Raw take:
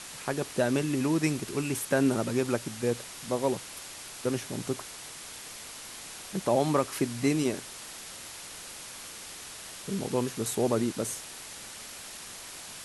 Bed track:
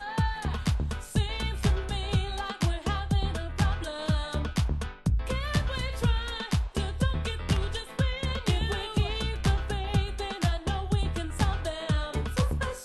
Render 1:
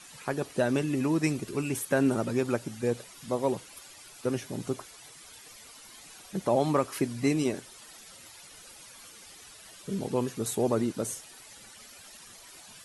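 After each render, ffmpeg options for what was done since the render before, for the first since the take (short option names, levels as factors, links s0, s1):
-af "afftdn=nr=12:nf=-44"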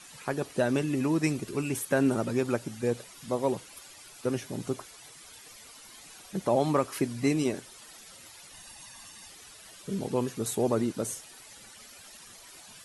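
-filter_complex "[0:a]asettb=1/sr,asplit=3[s0][s1][s2];[s0]atrim=end=8.534[s3];[s1]atrim=start=8.53:end=9.28,asetpts=PTS-STARTPTS,afade=t=in:d=0.004:c=qsin,afade=t=out:st=0.746:d=0.004:c=qsin,aecho=1:1:1.1:0.65,atrim=end_sample=33075[s4];[s2]atrim=start=9.276[s5];[s3][s4]acrossfade=d=0.004:c1=hsin:c2=qsin[s6];[s6][s5]acrossfade=d=0.004:c1=qsin:c2=hsin"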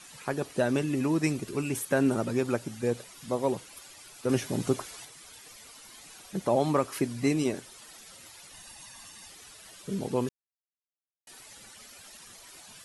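-filter_complex "[0:a]asettb=1/sr,asplit=3[s0][s1][s2];[s0]atrim=end=4.294[s3];[s1]atrim=start=4.29:end=5.05,asetpts=PTS-STARTPTS,afade=t=in:d=0.004:c=qsin,afade=t=out:st=0.756:d=0.004:c=qsin,acontrast=34[s4];[s2]atrim=start=5.046[s5];[s3][s4]acrossfade=d=0.004:c1=hsin:c2=qsin[s6];[s6][s5]acrossfade=d=0.004:c1=qsin:c2=hsin,asplit=3[s7][s8][s9];[s7]atrim=end=10.29,asetpts=PTS-STARTPTS,afade=t=out:st=10.286:d=0.004:c=hsin[s10];[s8]atrim=start=10.29:end=11.27,asetpts=PTS-STARTPTS,volume=0[s11];[s9]atrim=start=11.27,asetpts=PTS-STARTPTS,afade=t=in:d=0.004:c=hsin[s12];[s10][s11][s12]concat=n=3:v=0:a=1"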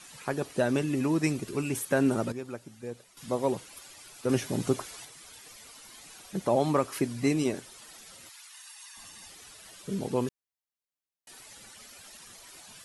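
-filter_complex "[0:a]asettb=1/sr,asplit=3[s0][s1][s2];[s0]atrim=end=8.294[s3];[s1]atrim=start=8.29:end=8.97,asetpts=PTS-STARTPTS,afade=t=in:d=0.004:c=qsin,afade=t=out:st=0.676:d=0.004:c=qsin,highpass=f=1000:w=0.5412,highpass=f=1000:w=1.3066[s4];[s2]atrim=start=8.966[s5];[s3][s4]acrossfade=d=0.004:c1=hsin:c2=qsin[s6];[s6][s5]acrossfade=d=0.004:c1=qsin:c2=hsin,asplit=3[s7][s8][s9];[s7]atrim=end=2.322[s10];[s8]atrim=start=2.318:end=3.172,asetpts=PTS-STARTPTS,volume=0.299[s11];[s9]atrim=start=3.168[s12];[s10][s11]acrossfade=d=0.004:c1=hsin:c2=hsin[s13];[s13][s12]acrossfade=d=0.004:c1=hsin:c2=hsin"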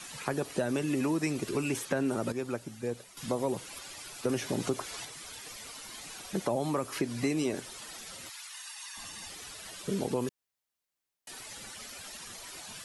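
-filter_complex "[0:a]asplit=2[s0][s1];[s1]alimiter=limit=0.0794:level=0:latency=1,volume=0.891[s2];[s0][s2]amix=inputs=2:normalize=0,acrossover=split=280|7100[s3][s4][s5];[s3]acompressor=threshold=0.0141:ratio=4[s6];[s4]acompressor=threshold=0.0316:ratio=4[s7];[s5]acompressor=threshold=0.00355:ratio=4[s8];[s6][s7][s8]amix=inputs=3:normalize=0"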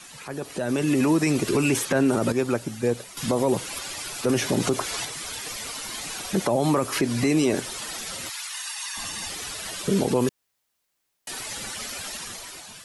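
-af "alimiter=limit=0.0668:level=0:latency=1:release=25,dynaudnorm=f=160:g=9:m=3.55"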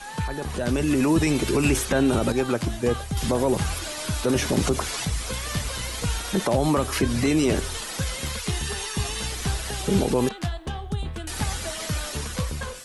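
-filter_complex "[1:a]volume=0.794[s0];[0:a][s0]amix=inputs=2:normalize=0"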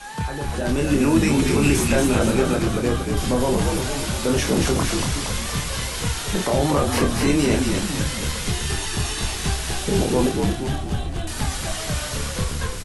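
-filter_complex "[0:a]asplit=2[s0][s1];[s1]adelay=28,volume=0.631[s2];[s0][s2]amix=inputs=2:normalize=0,asplit=9[s3][s4][s5][s6][s7][s8][s9][s10][s11];[s4]adelay=233,afreqshift=-55,volume=0.631[s12];[s5]adelay=466,afreqshift=-110,volume=0.372[s13];[s6]adelay=699,afreqshift=-165,volume=0.219[s14];[s7]adelay=932,afreqshift=-220,volume=0.13[s15];[s8]adelay=1165,afreqshift=-275,volume=0.0767[s16];[s9]adelay=1398,afreqshift=-330,volume=0.0452[s17];[s10]adelay=1631,afreqshift=-385,volume=0.0266[s18];[s11]adelay=1864,afreqshift=-440,volume=0.0157[s19];[s3][s12][s13][s14][s15][s16][s17][s18][s19]amix=inputs=9:normalize=0"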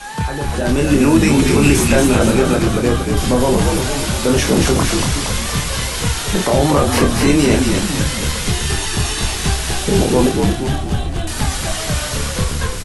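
-af "volume=2,alimiter=limit=0.891:level=0:latency=1"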